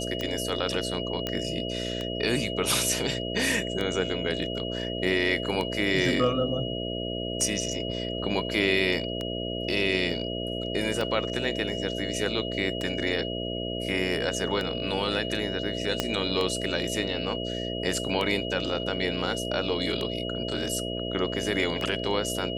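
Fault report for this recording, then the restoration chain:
buzz 60 Hz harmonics 11 -33 dBFS
tick 33 1/3 rpm -17 dBFS
tone 2900 Hz -35 dBFS
1.27 pop -14 dBFS
16 pop -9 dBFS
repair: de-click; notch 2900 Hz, Q 30; de-hum 60 Hz, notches 11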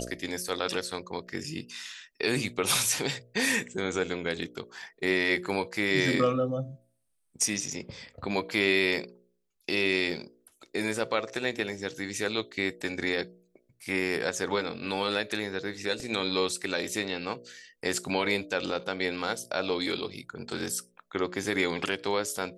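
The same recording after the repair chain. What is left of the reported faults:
16 pop

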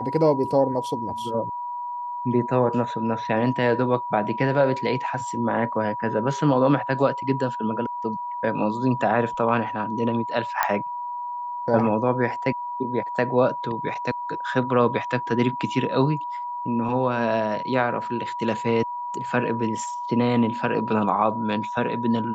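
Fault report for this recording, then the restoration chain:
tone 970 Hz -28 dBFS
10.63 pop -6 dBFS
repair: de-click; notch 970 Hz, Q 30

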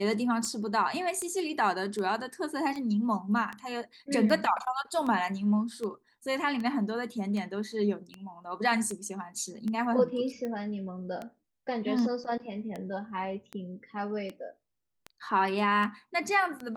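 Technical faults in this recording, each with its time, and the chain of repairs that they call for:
tick 78 rpm -24 dBFS
12.24–12.25 gap 5.9 ms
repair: de-click; interpolate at 12.24, 5.9 ms

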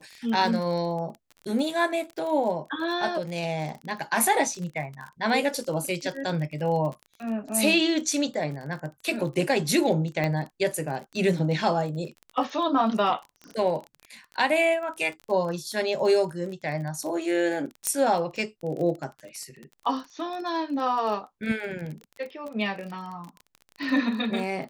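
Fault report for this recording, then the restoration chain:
crackle 26/s -33 dBFS
10.24 pop -15 dBFS
17.87 pop -9 dBFS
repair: de-click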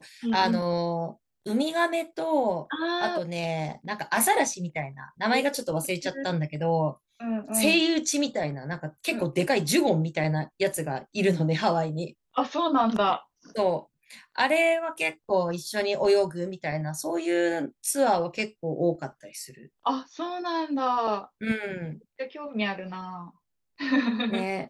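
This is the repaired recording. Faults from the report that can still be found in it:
none

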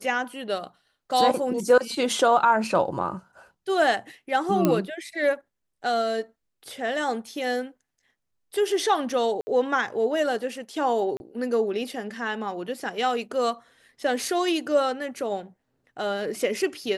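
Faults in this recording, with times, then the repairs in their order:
4.65 pop -8 dBFS
9.41–9.47 gap 60 ms
11.17–11.2 gap 31 ms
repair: de-click; interpolate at 9.41, 60 ms; interpolate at 11.17, 31 ms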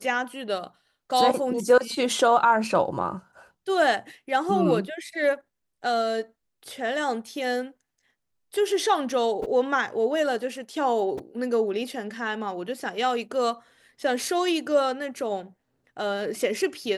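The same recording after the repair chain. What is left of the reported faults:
none

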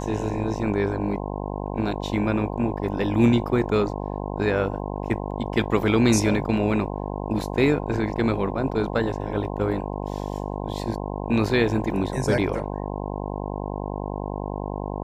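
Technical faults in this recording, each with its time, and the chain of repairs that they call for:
buzz 50 Hz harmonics 21 -30 dBFS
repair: de-hum 50 Hz, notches 21

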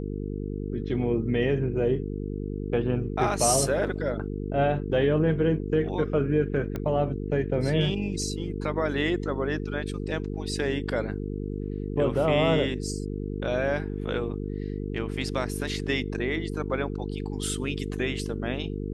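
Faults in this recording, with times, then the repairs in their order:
buzz 50 Hz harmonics 9 -32 dBFS
6.76 pop -19 dBFS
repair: de-click; de-hum 50 Hz, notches 9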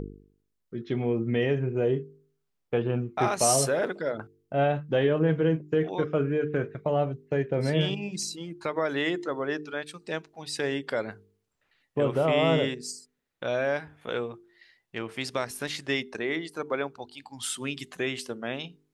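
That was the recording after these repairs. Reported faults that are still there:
none

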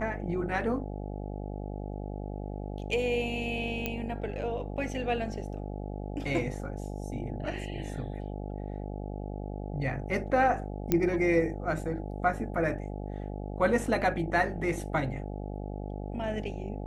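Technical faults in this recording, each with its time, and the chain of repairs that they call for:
buzz 50 Hz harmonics 17 -37 dBFS
3.86 pop -16 dBFS
10.92 pop -11 dBFS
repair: de-click; de-hum 50 Hz, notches 17

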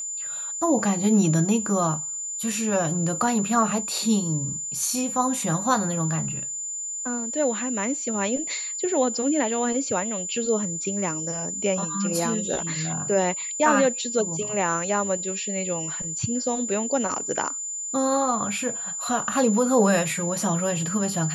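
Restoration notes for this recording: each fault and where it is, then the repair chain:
tone 7100 Hz -29 dBFS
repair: notch 7100 Hz, Q 30

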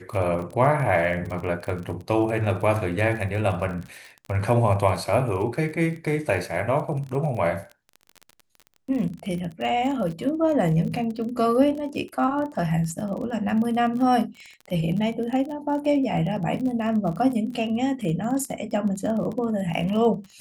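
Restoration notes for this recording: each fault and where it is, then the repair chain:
crackle 32/s -31 dBFS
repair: de-click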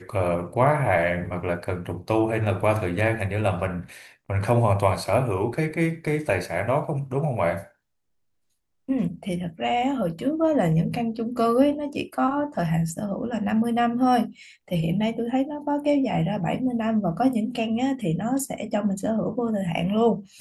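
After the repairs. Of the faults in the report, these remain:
none

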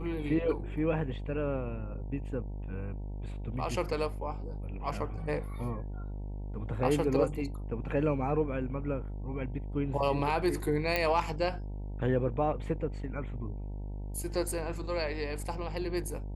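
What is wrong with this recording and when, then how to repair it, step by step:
buzz 50 Hz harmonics 19 -38 dBFS
10.96 pop -14 dBFS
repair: de-click; de-hum 50 Hz, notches 19

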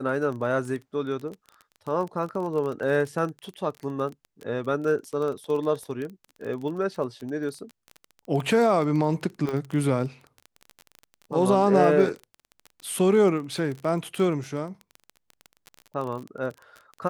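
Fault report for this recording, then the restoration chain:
crackle 22/s -31 dBFS
9.49 pop -18 dBFS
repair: de-click

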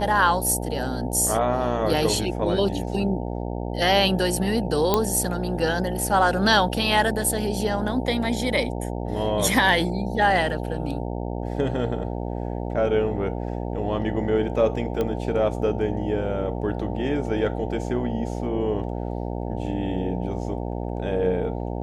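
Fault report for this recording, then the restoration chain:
buzz 60 Hz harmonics 15 -29 dBFS
4.94 pop -5 dBFS
15.01 pop -14 dBFS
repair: de-click; de-hum 60 Hz, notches 15

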